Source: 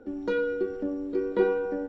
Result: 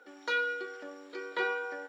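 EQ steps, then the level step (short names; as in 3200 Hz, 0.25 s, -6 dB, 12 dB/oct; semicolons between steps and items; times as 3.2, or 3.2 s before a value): HPF 1500 Hz 12 dB/oct; notch 2700 Hz, Q 18; +9.0 dB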